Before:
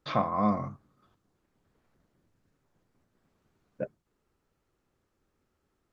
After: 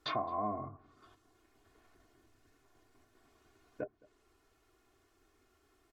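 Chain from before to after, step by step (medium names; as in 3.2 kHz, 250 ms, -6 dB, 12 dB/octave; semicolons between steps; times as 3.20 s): low-pass that closes with the level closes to 790 Hz, closed at -29.5 dBFS; bass shelf 420 Hz -6.5 dB; comb 2.8 ms, depth 83%; compression 2:1, threshold -49 dBFS, peak gain reduction 13.5 dB; echo from a far wall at 37 m, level -25 dB; trim +6.5 dB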